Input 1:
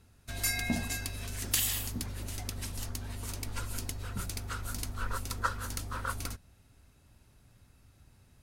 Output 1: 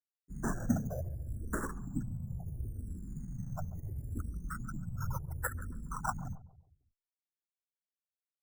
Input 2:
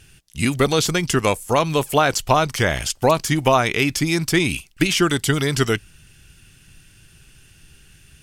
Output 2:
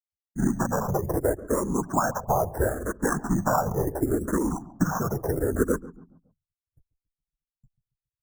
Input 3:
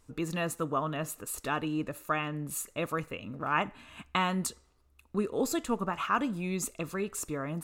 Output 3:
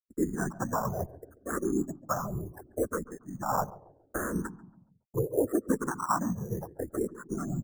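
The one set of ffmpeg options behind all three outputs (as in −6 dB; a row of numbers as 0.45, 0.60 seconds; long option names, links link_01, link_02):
-filter_complex "[0:a]bandreject=frequency=60:width_type=h:width=6,bandreject=frequency=120:width_type=h:width=6,bandreject=frequency=180:width_type=h:width=6,afftfilt=real='re*gte(hypot(re,im),0.0501)':imag='im*gte(hypot(re,im),0.0501)':win_size=1024:overlap=0.75,agate=range=-35dB:threshold=-46dB:ratio=16:detection=peak,equalizer=frequency=290:width=0.39:gain=3.5,acompressor=threshold=-24dB:ratio=2.5,afftfilt=real='hypot(re,im)*cos(2*PI*random(0))':imag='hypot(re,im)*sin(2*PI*random(1))':win_size=512:overlap=0.75,acrusher=samples=16:mix=1:aa=0.000001:lfo=1:lforange=9.6:lforate=0.35,asuperstop=centerf=3200:order=12:qfactor=0.74,asplit=2[link_01][link_02];[link_02]adelay=139,lowpass=frequency=840:poles=1,volume=-16dB,asplit=2[link_03][link_04];[link_04]adelay=139,lowpass=frequency=840:poles=1,volume=0.47,asplit=2[link_05][link_06];[link_06]adelay=139,lowpass=frequency=840:poles=1,volume=0.47,asplit=2[link_07][link_08];[link_08]adelay=139,lowpass=frequency=840:poles=1,volume=0.47[link_09];[link_03][link_05][link_07][link_09]amix=inputs=4:normalize=0[link_10];[link_01][link_10]amix=inputs=2:normalize=0,asplit=2[link_11][link_12];[link_12]afreqshift=-0.72[link_13];[link_11][link_13]amix=inputs=2:normalize=1,volume=8.5dB"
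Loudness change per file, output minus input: −4.5, −7.5, 0.0 LU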